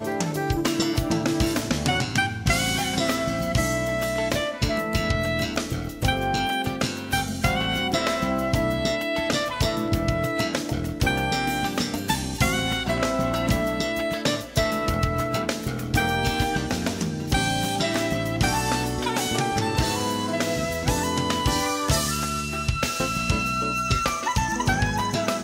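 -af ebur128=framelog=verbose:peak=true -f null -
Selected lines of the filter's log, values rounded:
Integrated loudness:
  I:         -24.3 LUFS
  Threshold: -34.3 LUFS
Loudness range:
  LRA:         1.1 LU
  Threshold: -44.3 LUFS
  LRA low:   -24.8 LUFS
  LRA high:  -23.6 LUFS
True peak:
  Peak:       -9.7 dBFS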